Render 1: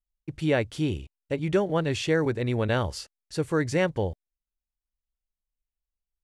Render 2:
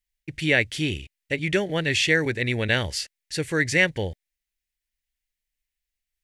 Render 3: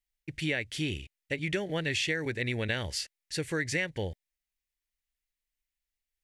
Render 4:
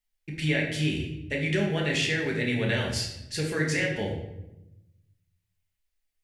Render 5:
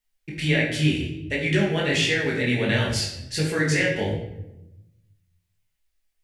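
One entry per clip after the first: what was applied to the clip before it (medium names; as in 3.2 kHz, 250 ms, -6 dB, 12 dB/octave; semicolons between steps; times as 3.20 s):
resonant high shelf 1.5 kHz +8 dB, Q 3
compression 10:1, threshold -22 dBFS, peak gain reduction 9 dB; trim -4.5 dB
reverberation RT60 0.90 s, pre-delay 5 ms, DRR -2 dB
chorus 1.4 Hz, delay 16.5 ms, depth 7.1 ms; trim +7.5 dB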